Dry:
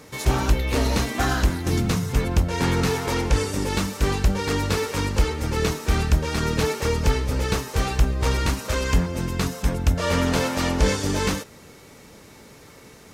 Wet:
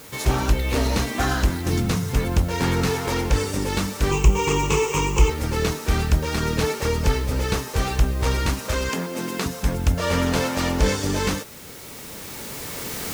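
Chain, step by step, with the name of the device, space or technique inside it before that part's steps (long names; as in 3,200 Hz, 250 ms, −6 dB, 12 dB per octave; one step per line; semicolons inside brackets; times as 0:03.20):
0:08.89–0:09.46: high-pass filter 200 Hz 24 dB per octave
cheap recorder with automatic gain (white noise bed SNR 23 dB; camcorder AGC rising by 7.6 dB per second)
0:04.11–0:05.30: EQ curve with evenly spaced ripples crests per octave 0.72, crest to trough 15 dB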